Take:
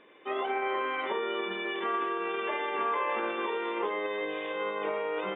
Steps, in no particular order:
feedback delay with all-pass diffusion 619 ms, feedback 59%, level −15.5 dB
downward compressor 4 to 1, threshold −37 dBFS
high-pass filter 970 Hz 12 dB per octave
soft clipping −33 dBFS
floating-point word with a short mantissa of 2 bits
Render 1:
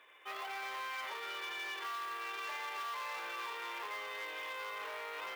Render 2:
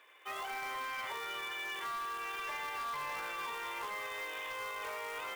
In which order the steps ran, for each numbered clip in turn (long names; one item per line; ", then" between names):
feedback delay with all-pass diffusion, then soft clipping, then high-pass filter, then floating-point word with a short mantissa, then downward compressor
feedback delay with all-pass diffusion, then floating-point word with a short mantissa, then high-pass filter, then soft clipping, then downward compressor